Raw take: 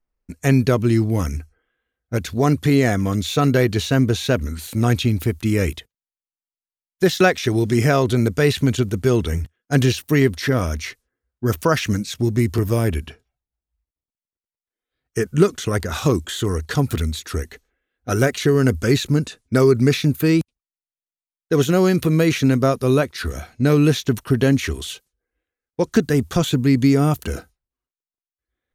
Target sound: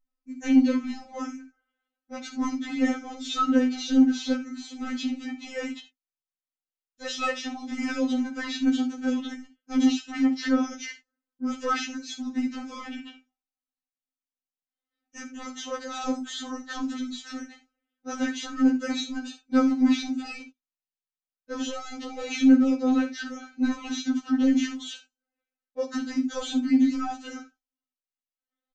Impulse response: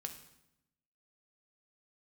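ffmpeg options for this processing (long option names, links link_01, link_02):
-filter_complex "[0:a]aresample=16000,asoftclip=type=tanh:threshold=-11.5dB,aresample=44100[link_01];[1:a]atrim=start_sample=2205,atrim=end_sample=3969[link_02];[link_01][link_02]afir=irnorm=-1:irlink=0,afftfilt=real='re*3.46*eq(mod(b,12),0)':imag='im*3.46*eq(mod(b,12),0)':win_size=2048:overlap=0.75,volume=-1.5dB"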